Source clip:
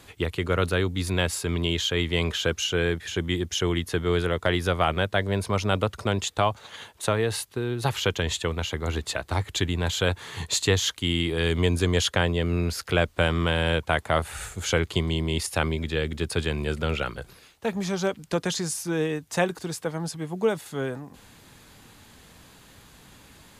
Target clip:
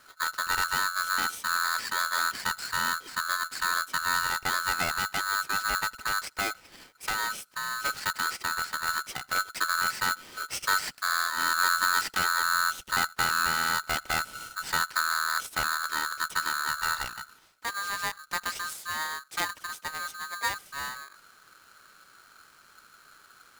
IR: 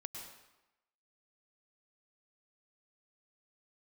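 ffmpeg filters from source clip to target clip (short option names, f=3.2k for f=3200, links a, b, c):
-filter_complex "[0:a]lowshelf=f=210:g=9.5,aeval=exprs='(tanh(3.55*val(0)+0.55)-tanh(0.55))/3.55':c=same[a];[1:a]atrim=start_sample=2205,afade=t=out:st=0.14:d=0.01,atrim=end_sample=6615,asetrate=52920,aresample=44100[b];[a][b]afir=irnorm=-1:irlink=0,aeval=exprs='val(0)*sgn(sin(2*PI*1400*n/s))':c=same"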